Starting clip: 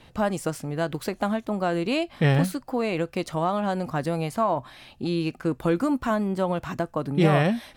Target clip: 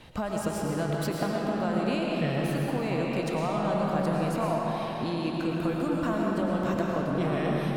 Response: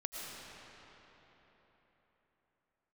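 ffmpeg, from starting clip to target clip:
-filter_complex "[0:a]acompressor=threshold=-30dB:ratio=6[a];[1:a]atrim=start_sample=2205[b];[a][b]afir=irnorm=-1:irlink=0,volume=4.5dB"

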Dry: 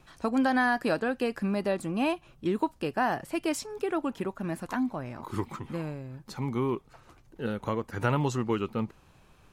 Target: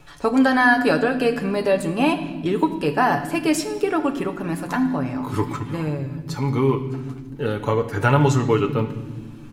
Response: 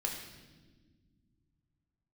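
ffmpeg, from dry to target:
-filter_complex "[0:a]aecho=1:1:7:0.54,asplit=2[a][b];[1:a]atrim=start_sample=2205[c];[b][c]afir=irnorm=-1:irlink=0,volume=-3.5dB[d];[a][d]amix=inputs=2:normalize=0,volume=3.5dB"

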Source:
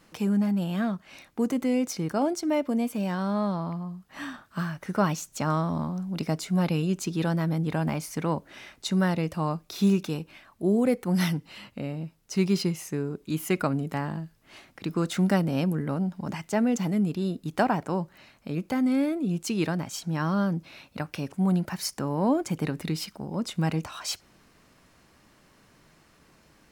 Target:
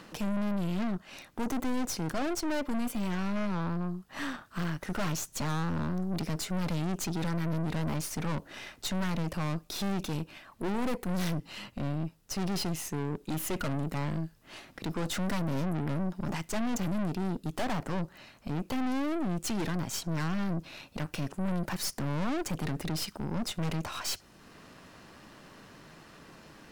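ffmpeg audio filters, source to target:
-filter_complex "[0:a]bandreject=f=2.2k:w=15,acrossover=split=110|5000[a][b][c];[b]acompressor=mode=upward:threshold=-46dB:ratio=2.5[d];[a][d][c]amix=inputs=3:normalize=0,aeval=exprs='(tanh(63.1*val(0)+0.75)-tanh(0.75))/63.1':c=same,volume=6dB"

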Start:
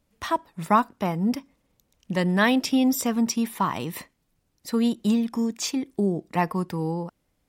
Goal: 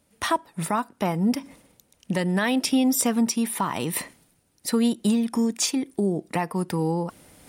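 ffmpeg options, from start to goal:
-filter_complex "[0:a]asplit=2[a][b];[b]acompressor=threshold=-29dB:ratio=6,volume=1dB[c];[a][c]amix=inputs=2:normalize=0,highpass=f=130:p=1,bandreject=f=1.1k:w=16,alimiter=limit=-13dB:level=0:latency=1:release=274,equalizer=f=9.4k:t=o:w=0.23:g=12,areverse,acompressor=mode=upward:threshold=-37dB:ratio=2.5,areverse"

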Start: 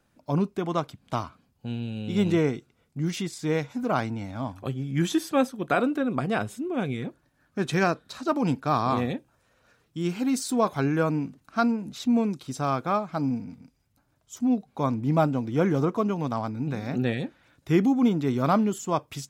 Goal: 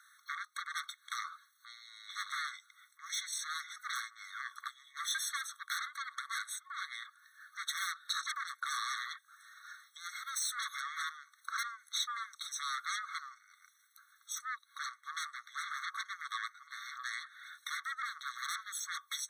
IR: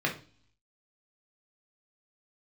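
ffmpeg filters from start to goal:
-filter_complex "[0:a]equalizer=f=210:w=3.8:g=-4.5,asplit=2[a][b];[b]aeval=exprs='0.335*sin(PI/2*8.91*val(0)/0.335)':c=same,volume=-6dB[c];[a][c]amix=inputs=2:normalize=0,acompressor=threshold=-25dB:ratio=16,afftfilt=real='re*eq(mod(floor(b*sr/1024/1100),2),1)':imag='im*eq(mod(floor(b*sr/1024/1100),2),1)':win_size=1024:overlap=0.75,volume=-4.5dB"

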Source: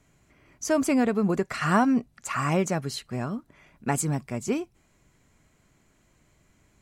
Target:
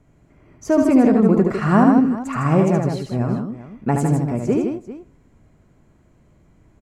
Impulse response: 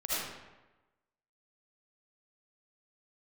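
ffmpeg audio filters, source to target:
-filter_complex "[0:a]tiltshelf=f=1.4k:g=8.5,aecho=1:1:73|156|394:0.596|0.501|0.178,asplit=2[a][b];[1:a]atrim=start_sample=2205,asetrate=57330,aresample=44100[c];[b][c]afir=irnorm=-1:irlink=0,volume=-26dB[d];[a][d]amix=inputs=2:normalize=0"

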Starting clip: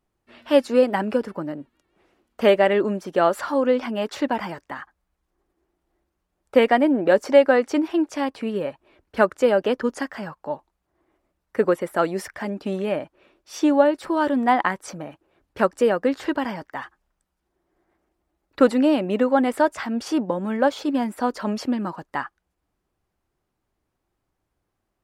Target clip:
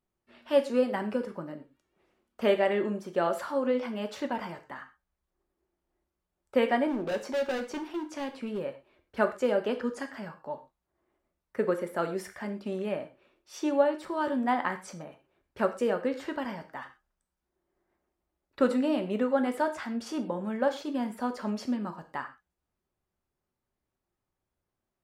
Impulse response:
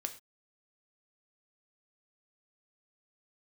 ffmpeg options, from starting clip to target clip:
-filter_complex "[0:a]asettb=1/sr,asplit=3[a][b][c];[a]atrim=end=6.874[d];[b]atrim=start=6.87:end=8.61,asetpts=PTS-STARTPTS,afade=t=in:d=0.004:c=qsin,afade=t=out:st=1.736:d=0.004:c=qsin,asoftclip=type=hard:threshold=-20.5dB[e];[c]atrim=start=8.606[f];[d][e]acrossfade=d=0.004:c1=hsin:c2=qsin[g];[g][f]acrossfade=d=0.004:c1=qsin:c2=hsin[h];[1:a]atrim=start_sample=2205[i];[h][i]afir=irnorm=-1:irlink=0,volume=-7.5dB"

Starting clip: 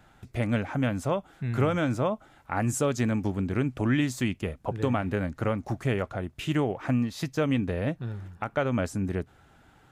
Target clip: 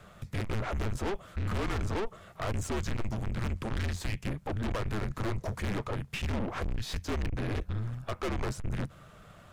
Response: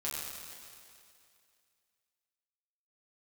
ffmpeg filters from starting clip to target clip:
-filter_complex "[0:a]acrossover=split=4500[a][b];[b]acompressor=threshold=-50dB:ratio=4:attack=1:release=60[c];[a][c]amix=inputs=2:normalize=0,acrossover=split=2600[d][e];[e]alimiter=level_in=10.5dB:limit=-24dB:level=0:latency=1:release=189,volume=-10.5dB[f];[d][f]amix=inputs=2:normalize=0,afreqshift=-210,aeval=exprs='(tanh(70.8*val(0)+0.5)-tanh(0.5))/70.8':c=same,asetrate=45938,aresample=44100,volume=7dB"

